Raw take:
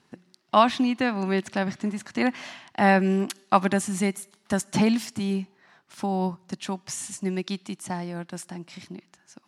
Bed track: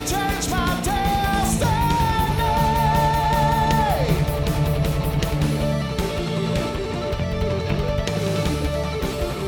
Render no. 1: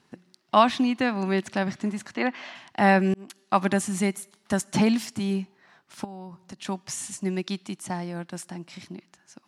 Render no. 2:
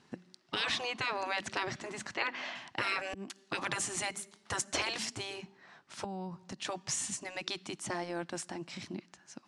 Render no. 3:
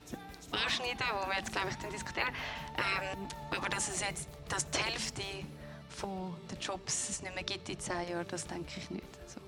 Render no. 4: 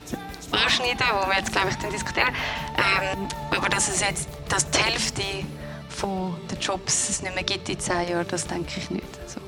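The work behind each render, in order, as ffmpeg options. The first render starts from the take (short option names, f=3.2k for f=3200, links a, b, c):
-filter_complex "[0:a]asplit=3[a][b][c];[a]afade=t=out:st=2.14:d=0.02[d];[b]highpass=280,lowpass=4.1k,afade=t=in:st=2.14:d=0.02,afade=t=out:st=2.54:d=0.02[e];[c]afade=t=in:st=2.54:d=0.02[f];[d][e][f]amix=inputs=3:normalize=0,asettb=1/sr,asplit=3[g][h][i];[g]atrim=end=6.044[j];[h]atrim=start=6.04:end=6.65,asetpts=PTS-STARTPTS,afade=t=in:d=0.004:c=qsin,afade=t=out:st=0.606:d=0.004:c=qsin,acompressor=threshold=-35dB:ratio=16:attack=3.2:release=140:knee=1:detection=peak[k];[i]atrim=start=6.646[l];[j][k]acrossfade=d=0.004:c1=hsin:c2=qsin[m];[m][l]acrossfade=d=0.004:c1=qsin:c2=hsin,asplit=2[n][o];[n]atrim=end=3.14,asetpts=PTS-STARTPTS,afade=t=out:st=3.136:d=0.004:c=hsin[p];[o]atrim=start=3.14,asetpts=PTS-STARTPTS,afade=t=in:d=0.55[q];[p][q]concat=n=2:v=0:a=1"
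-af "lowpass=f=9k:w=0.5412,lowpass=f=9k:w=1.3066,afftfilt=real='re*lt(hypot(re,im),0.158)':imag='im*lt(hypot(re,im),0.158)':win_size=1024:overlap=0.75"
-filter_complex "[1:a]volume=-27dB[a];[0:a][a]amix=inputs=2:normalize=0"
-af "volume=12dB"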